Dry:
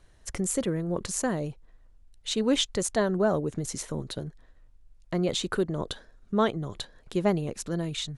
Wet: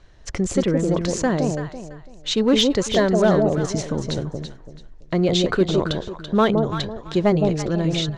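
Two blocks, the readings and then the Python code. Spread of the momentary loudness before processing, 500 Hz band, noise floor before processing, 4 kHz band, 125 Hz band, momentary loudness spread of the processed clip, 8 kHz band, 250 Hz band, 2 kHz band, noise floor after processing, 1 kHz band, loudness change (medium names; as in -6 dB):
12 LU, +9.0 dB, -57 dBFS, +8.0 dB, +9.5 dB, 13 LU, +1.5 dB, +9.0 dB, +8.0 dB, -43 dBFS, +7.5 dB, +8.5 dB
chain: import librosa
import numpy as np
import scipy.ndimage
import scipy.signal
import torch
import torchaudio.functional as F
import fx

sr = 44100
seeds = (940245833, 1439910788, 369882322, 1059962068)

p1 = scipy.signal.sosfilt(scipy.signal.butter(4, 6200.0, 'lowpass', fs=sr, output='sos'), x)
p2 = 10.0 ** (-20.0 / 20.0) * (np.abs((p1 / 10.0 ** (-20.0 / 20.0) + 3.0) % 4.0 - 2.0) - 1.0)
p3 = p1 + (p2 * librosa.db_to_amplitude(-9.5))
p4 = fx.echo_alternate(p3, sr, ms=167, hz=810.0, feedback_pct=50, wet_db=-2.5)
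y = p4 * librosa.db_to_amplitude(5.0)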